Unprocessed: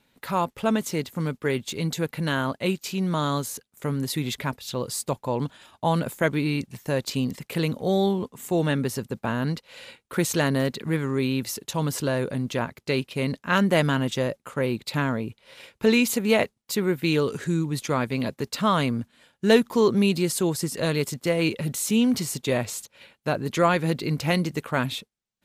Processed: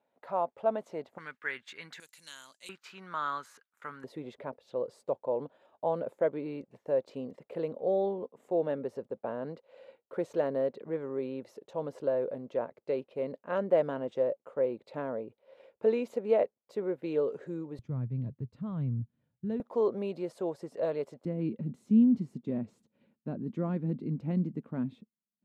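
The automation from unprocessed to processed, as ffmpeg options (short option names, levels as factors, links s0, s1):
-af "asetnsamples=n=441:p=0,asendcmd='1.18 bandpass f 1700;2 bandpass f 7100;2.69 bandpass f 1400;4.04 bandpass f 540;17.79 bandpass f 120;19.6 bandpass f 590;21.25 bandpass f 220',bandpass=f=650:t=q:w=3:csg=0"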